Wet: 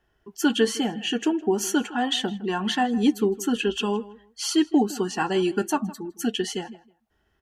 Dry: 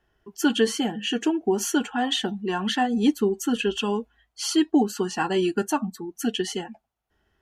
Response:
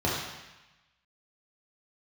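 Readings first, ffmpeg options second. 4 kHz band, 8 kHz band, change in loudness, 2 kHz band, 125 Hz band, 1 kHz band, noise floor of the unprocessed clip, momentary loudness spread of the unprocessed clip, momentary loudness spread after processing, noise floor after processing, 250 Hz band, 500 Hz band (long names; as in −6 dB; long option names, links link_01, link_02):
0.0 dB, 0.0 dB, 0.0 dB, 0.0 dB, 0.0 dB, 0.0 dB, −75 dBFS, 9 LU, 9 LU, −70 dBFS, 0.0 dB, 0.0 dB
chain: -filter_complex "[0:a]asplit=2[link_01][link_02];[link_02]adelay=160,lowpass=frequency=3200:poles=1,volume=-18.5dB,asplit=2[link_03][link_04];[link_04]adelay=160,lowpass=frequency=3200:poles=1,volume=0.2[link_05];[link_01][link_03][link_05]amix=inputs=3:normalize=0"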